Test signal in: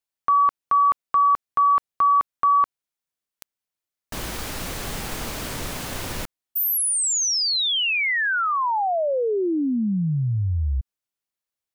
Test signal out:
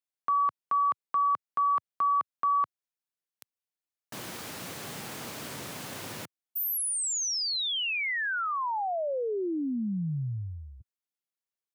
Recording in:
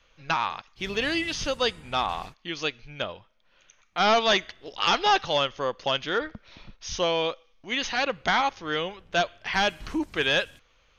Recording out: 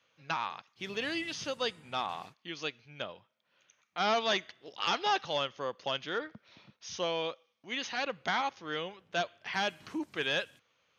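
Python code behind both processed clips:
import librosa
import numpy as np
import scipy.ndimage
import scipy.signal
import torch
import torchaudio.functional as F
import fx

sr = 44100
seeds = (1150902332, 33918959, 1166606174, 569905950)

y = scipy.signal.sosfilt(scipy.signal.butter(4, 110.0, 'highpass', fs=sr, output='sos'), x)
y = y * librosa.db_to_amplitude(-8.0)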